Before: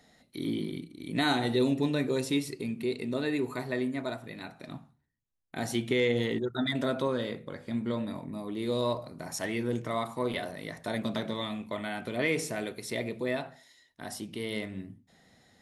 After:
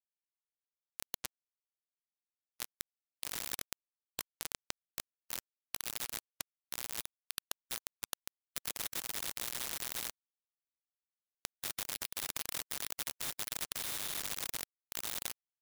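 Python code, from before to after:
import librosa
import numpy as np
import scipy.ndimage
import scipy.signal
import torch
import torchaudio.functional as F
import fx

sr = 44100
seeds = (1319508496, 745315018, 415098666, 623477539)

p1 = x[::-1].copy()
p2 = fx.fuzz(p1, sr, gain_db=48.0, gate_db=-46.0)
p3 = p1 + (p2 * librosa.db_to_amplitude(-3.0))
p4 = fx.band_shelf(p3, sr, hz=800.0, db=-9.5, octaves=1.7)
p5 = fx.freq_invert(p4, sr, carrier_hz=3900)
p6 = fx.low_shelf(p5, sr, hz=100.0, db=-9.5)
p7 = fx.resonator_bank(p6, sr, root=45, chord='minor', decay_s=0.48)
p8 = fx.echo_split(p7, sr, split_hz=2300.0, low_ms=258, high_ms=129, feedback_pct=52, wet_db=-5)
p9 = np.where(np.abs(p8) >= 10.0 ** (-24.5 / 20.0), p8, 0.0)
p10 = fx.spectral_comp(p9, sr, ratio=4.0)
y = p10 * librosa.db_to_amplitude(4.0)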